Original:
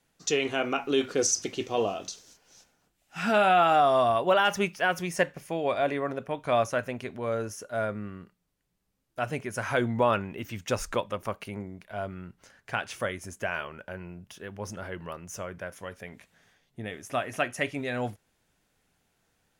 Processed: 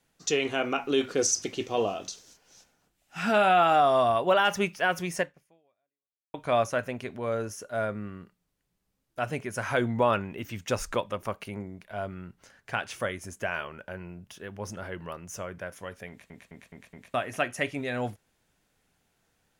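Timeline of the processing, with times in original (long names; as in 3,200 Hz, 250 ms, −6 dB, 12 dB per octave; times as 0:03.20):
0:05.17–0:06.34: fade out exponential
0:16.09: stutter in place 0.21 s, 5 plays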